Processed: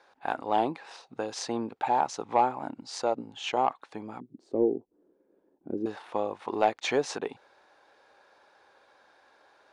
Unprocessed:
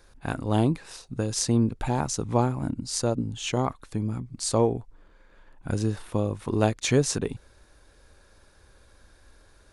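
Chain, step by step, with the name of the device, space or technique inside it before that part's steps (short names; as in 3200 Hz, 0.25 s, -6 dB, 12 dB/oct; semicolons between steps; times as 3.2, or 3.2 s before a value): intercom (BPF 440–3700 Hz; bell 810 Hz +9 dB 0.5 oct; soft clip -11 dBFS, distortion -20 dB); 4.2–5.86 EQ curve 140 Hz 0 dB, 200 Hz +6 dB, 360 Hz +9 dB, 850 Hz -22 dB, 2200 Hz -28 dB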